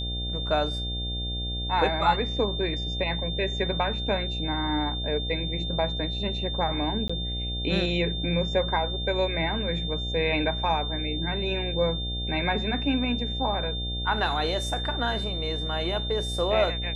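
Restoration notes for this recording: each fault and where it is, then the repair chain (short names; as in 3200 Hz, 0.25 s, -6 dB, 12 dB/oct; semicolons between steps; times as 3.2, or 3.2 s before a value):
buzz 60 Hz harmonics 13 -32 dBFS
tone 3600 Hz -32 dBFS
7.08–7.09 gap 15 ms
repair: de-hum 60 Hz, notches 13; notch 3600 Hz, Q 30; interpolate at 7.08, 15 ms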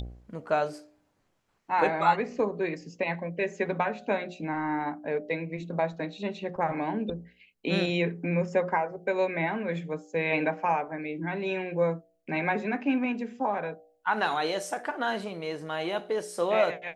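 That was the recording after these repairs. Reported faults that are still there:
none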